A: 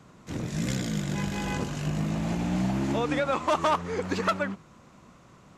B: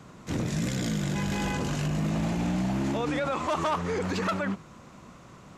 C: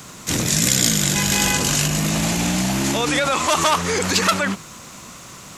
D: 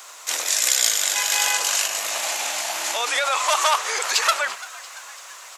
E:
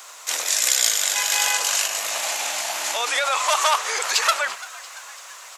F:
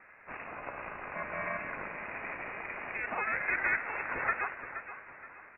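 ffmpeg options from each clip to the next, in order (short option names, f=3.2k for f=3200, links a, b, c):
-af "alimiter=level_in=1.5dB:limit=-24dB:level=0:latency=1:release=22,volume=-1.5dB,volume=4.5dB"
-af "crystalizer=i=7.5:c=0,volume=5.5dB"
-filter_complex "[0:a]highpass=f=610:w=0.5412,highpass=f=610:w=1.3066,asplit=6[a][b][c][d][e][f];[b]adelay=340,afreqshift=120,volume=-19dB[g];[c]adelay=680,afreqshift=240,volume=-23.3dB[h];[d]adelay=1020,afreqshift=360,volume=-27.6dB[i];[e]adelay=1360,afreqshift=480,volume=-31.9dB[j];[f]adelay=1700,afreqshift=600,volume=-36.2dB[k];[a][g][h][i][j][k]amix=inputs=6:normalize=0,volume=-1dB"
-af "equalizer=f=340:w=6.2:g=-4.5"
-af "aeval=exprs='val(0)*sin(2*PI*210*n/s)':c=same,lowpass=f=2.5k:t=q:w=0.5098,lowpass=f=2.5k:t=q:w=0.6013,lowpass=f=2.5k:t=q:w=0.9,lowpass=f=2.5k:t=q:w=2.563,afreqshift=-2900,aecho=1:1:474|948|1422|1896:0.282|0.0986|0.0345|0.0121,volume=-7dB"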